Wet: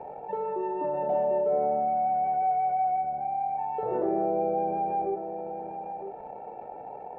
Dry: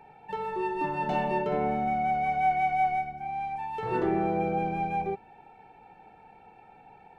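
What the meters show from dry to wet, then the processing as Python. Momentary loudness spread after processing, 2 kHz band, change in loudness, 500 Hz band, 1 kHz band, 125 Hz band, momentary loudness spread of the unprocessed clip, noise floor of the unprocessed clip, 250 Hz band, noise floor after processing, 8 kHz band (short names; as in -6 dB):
15 LU, under -15 dB, +0.5 dB, +4.5 dB, +1.0 dB, -9.0 dB, 9 LU, -55 dBFS, -3.0 dB, -42 dBFS, n/a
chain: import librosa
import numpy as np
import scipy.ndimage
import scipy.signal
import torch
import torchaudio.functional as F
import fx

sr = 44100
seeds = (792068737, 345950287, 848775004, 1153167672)

p1 = fx.tilt_eq(x, sr, slope=4.0)
p2 = fx.quant_dither(p1, sr, seeds[0], bits=8, dither='none')
p3 = p1 + (p2 * 10.0 ** (-7.5 / 20.0))
p4 = fx.lowpass_res(p3, sr, hz=580.0, q=3.9)
p5 = fx.doubler(p4, sr, ms=15.0, db=-12.0)
p6 = p5 + 10.0 ** (-17.5 / 20.0) * np.pad(p5, (int(955 * sr / 1000.0), 0))[:len(p5)]
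p7 = fx.env_flatten(p6, sr, amount_pct=50)
y = p7 * 10.0 ** (-6.0 / 20.0)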